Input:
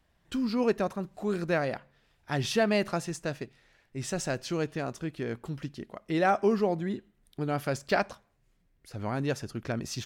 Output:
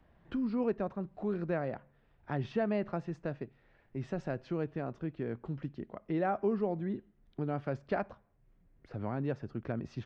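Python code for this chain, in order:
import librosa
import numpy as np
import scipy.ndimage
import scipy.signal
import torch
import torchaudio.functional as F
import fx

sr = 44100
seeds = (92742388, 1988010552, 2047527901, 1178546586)

y = fx.spacing_loss(x, sr, db_at_10k=42)
y = fx.band_squash(y, sr, depth_pct=40)
y = y * 10.0 ** (-3.0 / 20.0)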